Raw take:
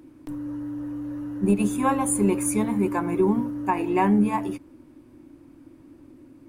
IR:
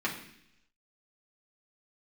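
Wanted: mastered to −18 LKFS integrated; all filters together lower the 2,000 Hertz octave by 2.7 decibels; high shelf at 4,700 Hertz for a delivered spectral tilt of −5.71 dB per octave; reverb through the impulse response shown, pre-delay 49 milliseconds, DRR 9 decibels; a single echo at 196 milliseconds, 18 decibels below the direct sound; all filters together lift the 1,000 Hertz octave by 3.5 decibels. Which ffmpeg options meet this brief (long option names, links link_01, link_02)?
-filter_complex "[0:a]equalizer=frequency=1000:width_type=o:gain=5,equalizer=frequency=2000:width_type=o:gain=-4,highshelf=frequency=4700:gain=-6,aecho=1:1:196:0.126,asplit=2[link_01][link_02];[1:a]atrim=start_sample=2205,adelay=49[link_03];[link_02][link_03]afir=irnorm=-1:irlink=0,volume=-17dB[link_04];[link_01][link_04]amix=inputs=2:normalize=0,volume=5dB"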